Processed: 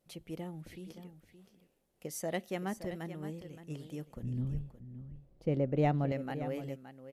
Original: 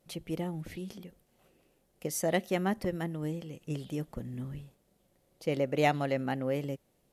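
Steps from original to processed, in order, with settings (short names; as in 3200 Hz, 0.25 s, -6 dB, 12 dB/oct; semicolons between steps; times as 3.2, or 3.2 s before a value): 4.23–6.12 tilt -4 dB/oct; echo 0.57 s -12 dB; gain -7 dB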